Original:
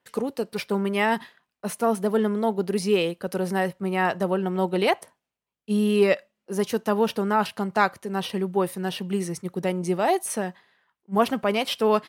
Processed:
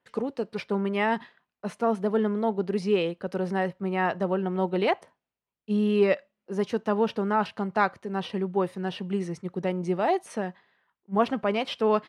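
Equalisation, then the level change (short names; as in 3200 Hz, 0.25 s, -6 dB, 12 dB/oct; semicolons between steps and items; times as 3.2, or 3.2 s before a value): air absorption 71 m; high shelf 4800 Hz -7.5 dB; -2.0 dB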